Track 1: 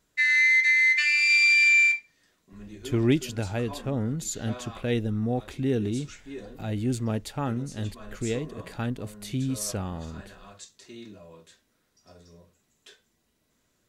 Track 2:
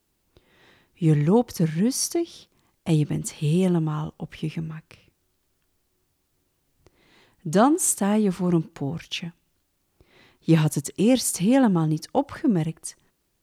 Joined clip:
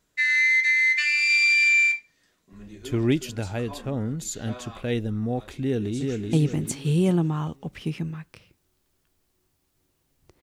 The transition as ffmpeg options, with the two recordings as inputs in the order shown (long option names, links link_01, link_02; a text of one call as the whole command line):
ffmpeg -i cue0.wav -i cue1.wav -filter_complex "[0:a]apad=whole_dur=10.42,atrim=end=10.42,atrim=end=6.332[link_01];[1:a]atrim=start=2.898:end=6.99[link_02];[link_01][link_02]acrossfade=duration=0.004:curve1=hsin:curve2=hsin,asplit=2[link_03][link_04];[link_04]afade=type=in:start_time=5.62:duration=0.01,afade=type=out:start_time=6.33:duration=0.01,aecho=0:1:380|760|1140|1520|1900:0.707946|0.283178|0.113271|0.0453085|0.0181234[link_05];[link_03][link_05]amix=inputs=2:normalize=0" out.wav